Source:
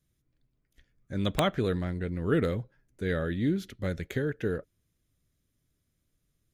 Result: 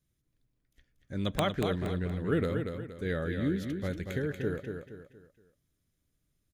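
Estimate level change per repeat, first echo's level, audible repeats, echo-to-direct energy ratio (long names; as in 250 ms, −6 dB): −8.5 dB, −6.0 dB, 4, −5.5 dB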